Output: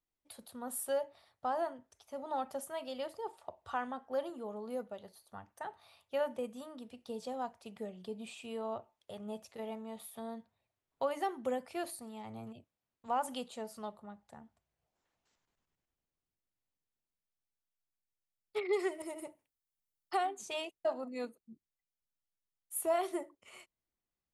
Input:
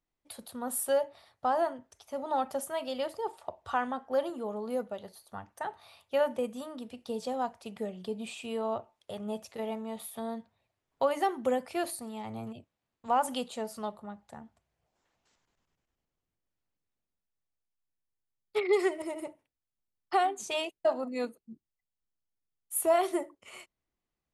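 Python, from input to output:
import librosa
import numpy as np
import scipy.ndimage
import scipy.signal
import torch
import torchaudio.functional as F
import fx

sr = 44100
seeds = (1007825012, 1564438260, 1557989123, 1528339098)

y = fx.high_shelf(x, sr, hz=fx.line((18.88, 8200.0), (20.16, 5800.0)), db=11.0, at=(18.88, 20.16), fade=0.02)
y = y * 10.0 ** (-6.5 / 20.0)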